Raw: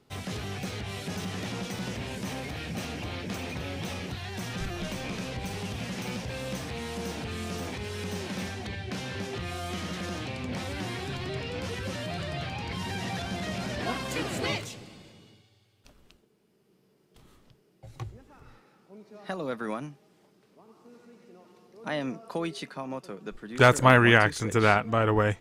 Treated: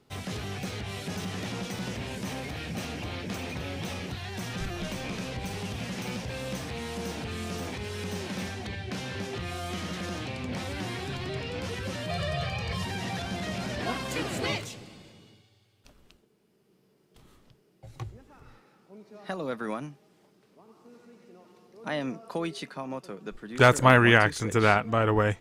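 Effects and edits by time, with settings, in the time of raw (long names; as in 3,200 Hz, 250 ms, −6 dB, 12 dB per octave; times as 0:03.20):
0:12.09–0:12.85: comb filter 1.7 ms, depth 91%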